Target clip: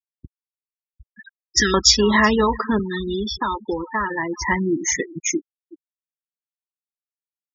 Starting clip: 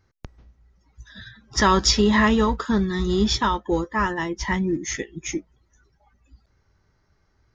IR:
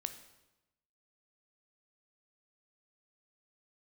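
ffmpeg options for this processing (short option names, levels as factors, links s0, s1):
-filter_complex "[0:a]asplit=2[s0][s1];[s1]acompressor=threshold=0.0501:ratio=10,volume=0.891[s2];[s0][s2]amix=inputs=2:normalize=0,aecho=1:1:374:0.133,asplit=2[s3][s4];[1:a]atrim=start_sample=2205,highshelf=f=6500:g=9[s5];[s4][s5]afir=irnorm=-1:irlink=0,volume=0.316[s6];[s3][s6]amix=inputs=2:normalize=0,acrusher=bits=7:mix=0:aa=0.000001,asettb=1/sr,asplit=3[s7][s8][s9];[s7]atrim=end=1.244[s10];[s8]atrim=start=1.24:end=1.74,asetpts=PTS-STARTPTS,afade=t=in:d=0.004:c=qsin,afade=t=out:st=0.496:d=0.004:c=qsin,asuperstop=centerf=800:order=8:qfactor=0.73[s11];[s9]atrim=start=1.736[s12];[s10][s11]acrossfade=d=0.004:c1=hsin:c2=qsin[s13];[s13][s12]acrossfade=d=0.004:c1=qsin:c2=hsin,asettb=1/sr,asplit=3[s14][s15][s16];[s14]atrim=end=2.794[s17];[s15]atrim=start=2.79:end=4.42,asetpts=PTS-STARTPTS,afade=t=in:d=0.004:c=qsin,afade=t=out:st=1.626:d=0.004:c=qsin,acrossover=split=150|1900|6300[s18][s19][s20][s21];[s18]acompressor=threshold=0.0398:ratio=4[s22];[s19]acompressor=threshold=0.0891:ratio=4[s23];[s20]acompressor=threshold=0.0355:ratio=4[s24];[s21]acompressor=threshold=0.00631:ratio=4[s25];[s22][s23][s24][s25]amix=inputs=4:normalize=0[s26];[s16]atrim=start=4.416[s27];[s17][s26]acrossfade=d=0.004:c1=hsin:c2=qsin[s28];[s28][s27]acrossfade=d=0.004:c1=qsin:c2=hsin,highpass=49,bass=f=250:g=-7,treble=f=4000:g=2,afftfilt=real='re*gte(hypot(re,im),0.112)':imag='im*gte(hypot(re,im),0.112)':win_size=1024:overlap=0.75"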